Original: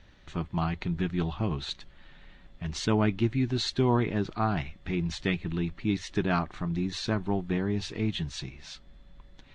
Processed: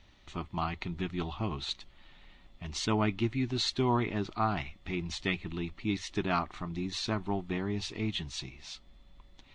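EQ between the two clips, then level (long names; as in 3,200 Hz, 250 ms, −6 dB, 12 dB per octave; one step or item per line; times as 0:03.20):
thirty-one-band graphic EQ 160 Hz −6 dB, 500 Hz −7 dB, 1,600 Hz −10 dB
dynamic equaliser 1,500 Hz, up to +4 dB, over −46 dBFS, Q 1.4
low-shelf EQ 430 Hz −4.5 dB
0.0 dB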